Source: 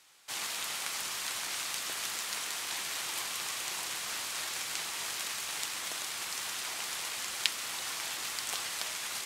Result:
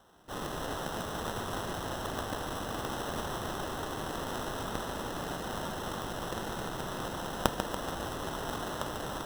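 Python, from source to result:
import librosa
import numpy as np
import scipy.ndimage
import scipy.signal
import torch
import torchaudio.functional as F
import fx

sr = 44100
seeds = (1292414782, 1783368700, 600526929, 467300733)

y = scipy.signal.sosfilt(scipy.signal.butter(2, 1200.0, 'highpass', fs=sr, output='sos'), x)
y = fx.sample_hold(y, sr, seeds[0], rate_hz=2300.0, jitter_pct=0)
y = fx.echo_feedback(y, sr, ms=143, feedback_pct=59, wet_db=-7.5)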